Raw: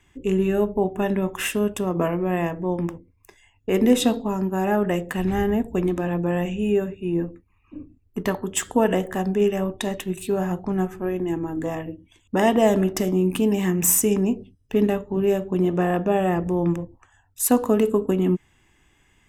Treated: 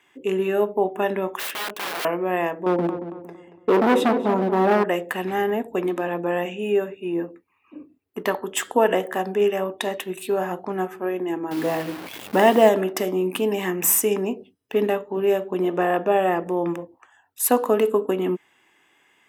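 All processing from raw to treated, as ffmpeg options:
-filter_complex "[0:a]asettb=1/sr,asplit=3[a][b][c];[a]atrim=end=1.394[d];[b]atrim=start=1.39:end=2.05,asetpts=PTS-STARTPTS,afade=t=in:d=0.004:c=qsin,afade=t=out:st=0.656:d=0.004:c=qsin,highpass=f=110:w=0.5412,highpass=f=110:w=1.3066,equalizer=f=8.5k:w=0.7:g=-12,aeval=exprs='(mod(20*val(0)+1,2)-1)/20':c=same[e];[c]atrim=start=2.046[f];[d][e]acrossfade=d=0.004:c1=hsin:c2=qsin[g];[g][f]acrossfade=d=0.004:c1=qsin:c2=hsin,asettb=1/sr,asplit=3[h][i][j];[h]atrim=end=2.664[k];[i]atrim=start=2.66:end=4.84,asetpts=PTS-STARTPTS,afade=t=in:d=0.004:c=qsin,afade=t=out:st=2.176:d=0.004:c=qsin,tiltshelf=f=1.2k:g=10,asoftclip=type=hard:threshold=-13.5dB,asplit=2[l][m];[m]adelay=229,lowpass=f=1.8k:p=1,volume=-10dB,asplit=2[n][o];[o]adelay=229,lowpass=f=1.8k:p=1,volume=0.4,asplit=2[p][q];[q]adelay=229,lowpass=f=1.8k:p=1,volume=0.4,asplit=2[r][s];[s]adelay=229,lowpass=f=1.8k:p=1,volume=0.4[t];[l][n][p][r][t]amix=inputs=5:normalize=0,atrim=end_sample=96138[u];[j]atrim=start=4.836[v];[k][u]acrossfade=d=0.004:c1=hsin:c2=qsin[w];[w][v]acrossfade=d=0.004:c1=qsin:c2=hsin,asettb=1/sr,asplit=3[x][y][z];[x]atrim=end=11.514[aa];[y]atrim=start=11.51:end=12.69,asetpts=PTS-STARTPTS,afade=t=in:d=0.004:c=qsin,afade=t=out:st=1.176:d=0.004:c=qsin,aeval=exprs='val(0)+0.5*0.0211*sgn(val(0))':c=same,equalizer=f=140:w=1:g=9,acrusher=bits=7:dc=4:mix=0:aa=0.000001[ab];[z]atrim=start=12.686[ac];[aa][ab]acrossfade=d=0.004:c1=hsin:c2=qsin[ad];[ad][ac]acrossfade=d=0.004:c1=qsin:c2=hsin,highpass=400,equalizer=f=6.9k:w=1.1:g=-7.5,volume=4dB"

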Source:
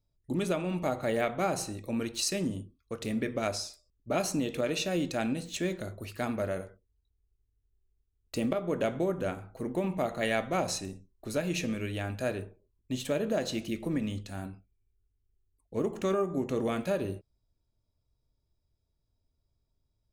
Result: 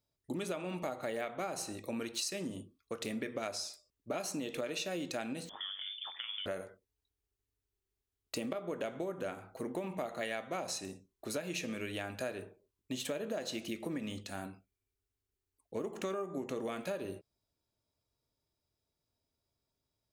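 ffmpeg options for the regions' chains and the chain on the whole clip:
-filter_complex "[0:a]asettb=1/sr,asplit=3[a][b][c];[a]atrim=end=5.494[d];[b]atrim=start=5.49:end=6.46,asetpts=PTS-STARTPTS,afade=t=in:d=0.004:c=qsin,afade=t=out:st=0.966:d=0.004:c=qsin,acompressor=threshold=-36dB:ratio=10:attack=3.2:release=140:knee=1:detection=peak,aeval=exprs='val(0)*sin(2*PI*49*n/s)':c=same,lowpass=f=3.1k:t=q:w=0.5098,lowpass=f=3.1k:t=q:w=0.6013,lowpass=f=3.1k:t=q:w=0.9,lowpass=f=3.1k:t=q:w=2.563,afreqshift=-3600[e];[c]atrim=start=6.456[f];[d][e]acrossfade=d=0.004:c1=hsin:c2=qsin[g];[g][f]acrossfade=d=0.004:c1=qsin:c2=hsin,highpass=f=360:p=1,acompressor=threshold=-37dB:ratio=5,volume=2dB"

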